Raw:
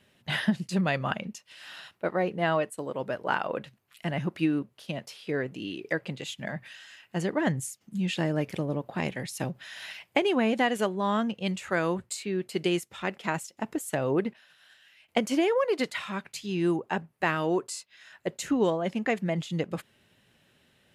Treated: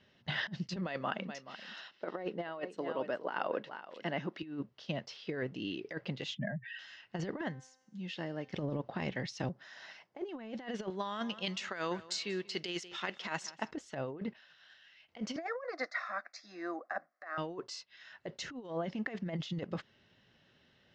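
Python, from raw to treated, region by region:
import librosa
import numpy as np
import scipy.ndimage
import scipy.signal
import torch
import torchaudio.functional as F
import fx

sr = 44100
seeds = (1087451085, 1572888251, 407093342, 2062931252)

y = fx.chain(x, sr, fx.cheby1_highpass(hz=270.0, order=2),
    fx.echo_single(ms=426, db=-15.5), at=(0.76, 4.43))
y = fx.chain(y, sr, fx.spec_expand(power=2.2),
    fx.band_squash(depth_pct=100), at=(6.35, 6.79))
y = fx.chain(y, sr, fx.highpass(hz=190.0, slope=6),
    fx.comb_fb(f0_hz=260.0, decay_s=1.0, harmonics='all', damping=0.0, mix_pct=60), at=(7.41, 8.53))
y = fx.chain(y, sr, fx.highpass(hz=180.0, slope=12),
    fx.peak_eq(hz=3000.0, db=-11.5, octaves=1.5), at=(9.49, 10.29))
y = fx.chain(y, sr, fx.tilt_eq(slope=3.0),
    fx.echo_feedback(ms=185, feedback_pct=40, wet_db=-22), at=(10.9, 13.71))
y = fx.chain(y, sr, fx.cabinet(low_hz=370.0, low_slope=24, high_hz=6800.0, hz=(420.0, 730.0, 1200.0, 1900.0, 3200.0), db=(-8, 9, 5, 4, -6)),
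    fx.fixed_phaser(hz=600.0, stages=8), at=(15.36, 17.38))
y = scipy.signal.sosfilt(scipy.signal.cheby1(4, 1.0, 5700.0, 'lowpass', fs=sr, output='sos'), y)
y = fx.notch(y, sr, hz=2400.0, q=11.0)
y = fx.over_compress(y, sr, threshold_db=-31.0, ratio=-0.5)
y = F.gain(torch.from_numpy(y), -5.0).numpy()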